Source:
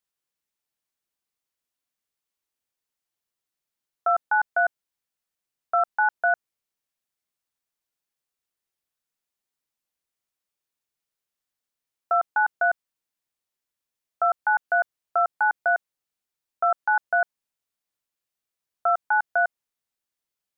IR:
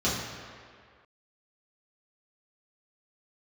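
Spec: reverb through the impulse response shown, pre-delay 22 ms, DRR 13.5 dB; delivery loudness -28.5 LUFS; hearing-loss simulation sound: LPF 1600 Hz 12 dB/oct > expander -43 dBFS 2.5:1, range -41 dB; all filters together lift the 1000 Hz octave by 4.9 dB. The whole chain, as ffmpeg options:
-filter_complex "[0:a]equalizer=f=1k:t=o:g=8.5,asplit=2[a][b];[1:a]atrim=start_sample=2205,adelay=22[c];[b][c]afir=irnorm=-1:irlink=0,volume=-26dB[d];[a][d]amix=inputs=2:normalize=0,lowpass=1.6k,agate=range=-41dB:threshold=-43dB:ratio=2.5,volume=-8.5dB"

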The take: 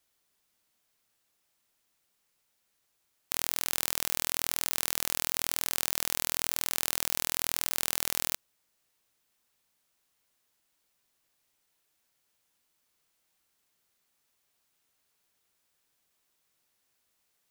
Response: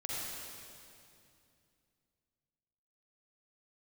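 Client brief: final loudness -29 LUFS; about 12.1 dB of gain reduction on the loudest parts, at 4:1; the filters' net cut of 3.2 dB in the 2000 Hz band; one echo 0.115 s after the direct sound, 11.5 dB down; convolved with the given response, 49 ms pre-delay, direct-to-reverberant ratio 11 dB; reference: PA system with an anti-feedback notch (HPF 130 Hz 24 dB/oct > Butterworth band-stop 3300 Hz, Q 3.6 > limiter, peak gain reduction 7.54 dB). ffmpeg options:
-filter_complex "[0:a]equalizer=f=2k:t=o:g=-4,acompressor=threshold=-37dB:ratio=4,aecho=1:1:115:0.266,asplit=2[a][b];[1:a]atrim=start_sample=2205,adelay=49[c];[b][c]afir=irnorm=-1:irlink=0,volume=-14dB[d];[a][d]amix=inputs=2:normalize=0,highpass=f=130:w=0.5412,highpass=f=130:w=1.3066,asuperstop=centerf=3300:order=8:qfactor=3.6,volume=16dB,alimiter=limit=-4dB:level=0:latency=1"

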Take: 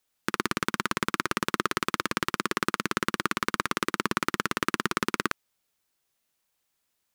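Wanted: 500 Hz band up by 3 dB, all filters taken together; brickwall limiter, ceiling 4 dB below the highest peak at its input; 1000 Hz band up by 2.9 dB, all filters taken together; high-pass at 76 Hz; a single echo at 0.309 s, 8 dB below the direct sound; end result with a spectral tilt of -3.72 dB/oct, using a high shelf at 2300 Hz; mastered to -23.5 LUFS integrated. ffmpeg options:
-af "highpass=76,equalizer=f=500:t=o:g=3.5,equalizer=f=1k:t=o:g=4,highshelf=f=2.3k:g=-3,alimiter=limit=-9dB:level=0:latency=1,aecho=1:1:309:0.398,volume=6dB"

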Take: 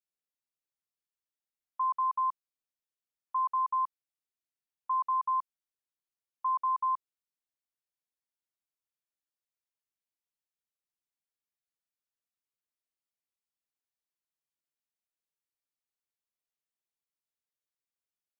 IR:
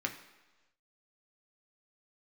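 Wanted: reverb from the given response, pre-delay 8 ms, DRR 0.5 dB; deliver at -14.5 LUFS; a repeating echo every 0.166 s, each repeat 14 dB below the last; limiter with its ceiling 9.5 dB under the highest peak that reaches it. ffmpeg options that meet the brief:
-filter_complex "[0:a]alimiter=level_in=10.5dB:limit=-24dB:level=0:latency=1,volume=-10.5dB,aecho=1:1:166|332:0.2|0.0399,asplit=2[a][b];[1:a]atrim=start_sample=2205,adelay=8[c];[b][c]afir=irnorm=-1:irlink=0,volume=-4.5dB[d];[a][d]amix=inputs=2:normalize=0,volume=25dB"

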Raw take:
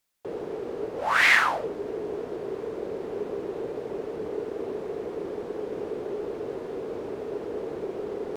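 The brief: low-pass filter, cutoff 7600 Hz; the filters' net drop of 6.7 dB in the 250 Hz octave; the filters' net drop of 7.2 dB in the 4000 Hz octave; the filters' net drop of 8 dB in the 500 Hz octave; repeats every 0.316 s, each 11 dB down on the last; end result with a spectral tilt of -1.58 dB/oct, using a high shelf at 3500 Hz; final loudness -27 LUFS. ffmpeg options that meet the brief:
-af "lowpass=7.6k,equalizer=f=250:t=o:g=-5.5,equalizer=f=500:t=o:g=-8,highshelf=f=3.5k:g=-5,equalizer=f=4k:t=o:g=-6.5,aecho=1:1:316|632|948:0.282|0.0789|0.0221,volume=5.5dB"

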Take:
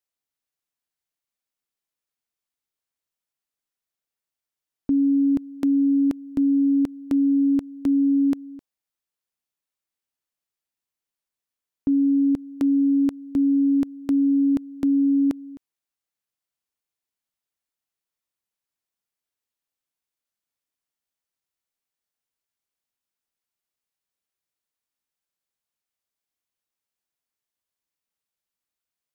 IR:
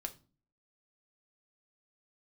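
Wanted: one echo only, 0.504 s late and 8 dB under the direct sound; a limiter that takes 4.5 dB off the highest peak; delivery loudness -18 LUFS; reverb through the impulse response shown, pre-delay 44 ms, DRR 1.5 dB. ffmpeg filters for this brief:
-filter_complex "[0:a]alimiter=limit=-20dB:level=0:latency=1,aecho=1:1:504:0.398,asplit=2[a][b];[1:a]atrim=start_sample=2205,adelay=44[c];[b][c]afir=irnorm=-1:irlink=0,volume=0.5dB[d];[a][d]amix=inputs=2:normalize=0,volume=3dB"

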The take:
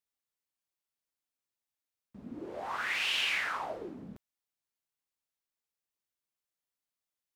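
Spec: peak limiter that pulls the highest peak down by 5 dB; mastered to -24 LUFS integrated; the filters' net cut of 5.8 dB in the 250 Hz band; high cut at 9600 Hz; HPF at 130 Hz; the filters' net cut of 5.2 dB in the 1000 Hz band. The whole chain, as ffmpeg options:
-af "highpass=130,lowpass=9.6k,equalizer=f=250:t=o:g=-7,equalizer=f=1k:t=o:g=-6.5,volume=11dB,alimiter=limit=-14dB:level=0:latency=1"

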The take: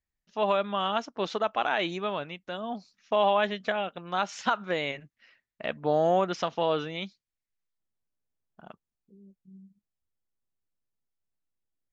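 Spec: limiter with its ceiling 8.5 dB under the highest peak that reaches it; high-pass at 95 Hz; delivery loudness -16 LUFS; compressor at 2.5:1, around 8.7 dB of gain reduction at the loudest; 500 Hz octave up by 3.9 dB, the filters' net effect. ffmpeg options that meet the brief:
-af "highpass=95,equalizer=f=500:t=o:g=5,acompressor=threshold=-30dB:ratio=2.5,volume=20dB,alimiter=limit=-4dB:level=0:latency=1"

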